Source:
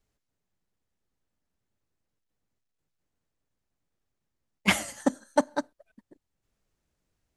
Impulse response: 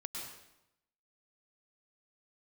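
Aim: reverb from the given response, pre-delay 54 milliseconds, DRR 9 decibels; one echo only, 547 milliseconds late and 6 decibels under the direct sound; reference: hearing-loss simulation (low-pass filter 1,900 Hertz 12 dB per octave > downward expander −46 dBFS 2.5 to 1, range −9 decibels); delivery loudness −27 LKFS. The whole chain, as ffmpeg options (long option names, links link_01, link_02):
-filter_complex "[0:a]aecho=1:1:547:0.501,asplit=2[link_01][link_02];[1:a]atrim=start_sample=2205,adelay=54[link_03];[link_02][link_03]afir=irnorm=-1:irlink=0,volume=-8.5dB[link_04];[link_01][link_04]amix=inputs=2:normalize=0,lowpass=1900,agate=range=-9dB:threshold=-46dB:ratio=2.5,volume=3dB"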